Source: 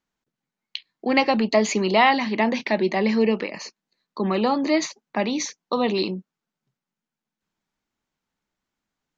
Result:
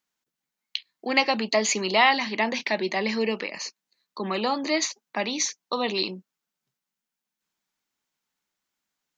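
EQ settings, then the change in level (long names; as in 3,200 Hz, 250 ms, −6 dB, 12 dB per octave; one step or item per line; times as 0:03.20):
spectral tilt +2.5 dB per octave
−2.5 dB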